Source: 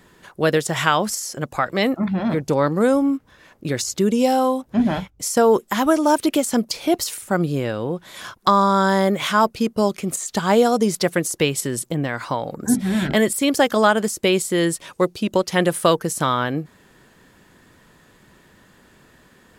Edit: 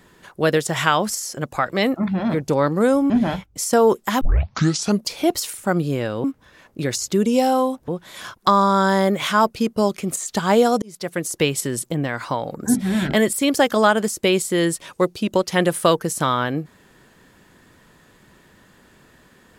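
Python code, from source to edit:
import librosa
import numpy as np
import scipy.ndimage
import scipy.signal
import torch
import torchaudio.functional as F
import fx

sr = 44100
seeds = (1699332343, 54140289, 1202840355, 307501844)

y = fx.edit(x, sr, fx.move(start_s=3.1, length_s=1.64, to_s=7.88),
    fx.tape_start(start_s=5.85, length_s=0.82),
    fx.fade_in_span(start_s=10.82, length_s=0.59), tone=tone)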